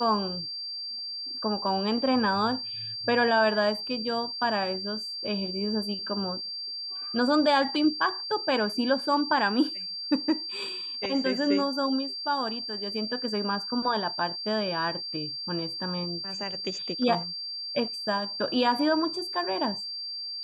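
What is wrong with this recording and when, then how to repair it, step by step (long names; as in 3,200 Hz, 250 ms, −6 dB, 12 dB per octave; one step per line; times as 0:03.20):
whistle 4,700 Hz −33 dBFS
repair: notch filter 4,700 Hz, Q 30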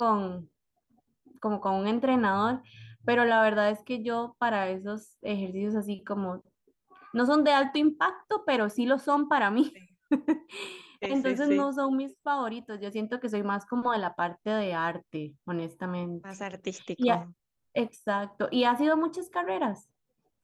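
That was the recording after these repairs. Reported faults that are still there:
none of them is left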